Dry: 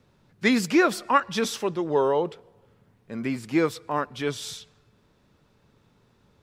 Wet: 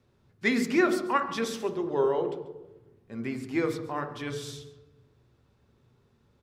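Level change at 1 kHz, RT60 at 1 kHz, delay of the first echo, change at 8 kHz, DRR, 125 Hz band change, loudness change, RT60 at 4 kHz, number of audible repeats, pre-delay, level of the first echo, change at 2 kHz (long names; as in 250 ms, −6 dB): −5.5 dB, 0.90 s, 138 ms, −7.0 dB, 6.0 dB, −4.0 dB, −4.0 dB, 0.80 s, 1, 3 ms, −17.0 dB, −3.5 dB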